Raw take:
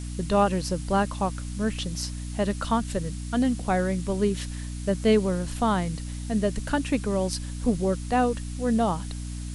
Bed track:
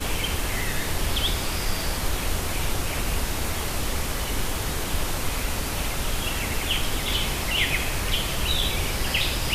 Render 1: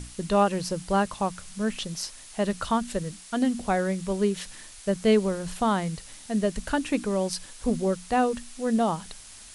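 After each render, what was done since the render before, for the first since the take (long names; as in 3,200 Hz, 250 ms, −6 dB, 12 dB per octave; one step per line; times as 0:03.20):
mains-hum notches 60/120/180/240/300 Hz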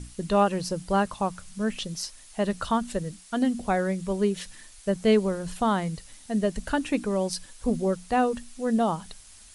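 broadband denoise 6 dB, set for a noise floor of −46 dBFS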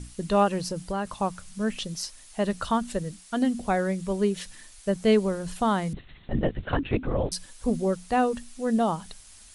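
0:00.62–0:01.08: downward compressor 4 to 1, threshold −26 dBFS
0:05.93–0:07.32: linear-prediction vocoder at 8 kHz whisper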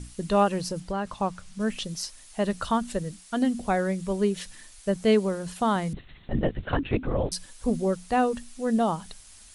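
0:00.80–0:01.60: high-frequency loss of the air 51 metres
0:05.05–0:05.76: high-pass filter 86 Hz 6 dB per octave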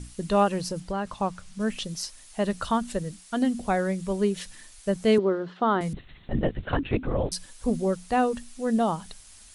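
0:05.18–0:05.81: loudspeaker in its box 200–3,500 Hz, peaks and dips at 370 Hz +9 dB, 1,300 Hz +5 dB, 2,500 Hz −8 dB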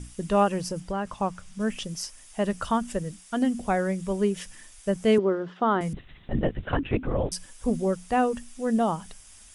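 notch filter 4,200 Hz, Q 6.1
dynamic equaliser 3,700 Hz, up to −5 dB, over −60 dBFS, Q 7.4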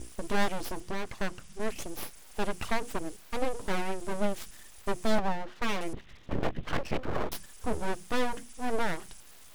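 one-sided soft clipper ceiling −24 dBFS
full-wave rectification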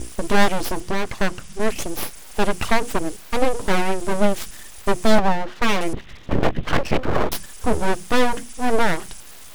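level +11.5 dB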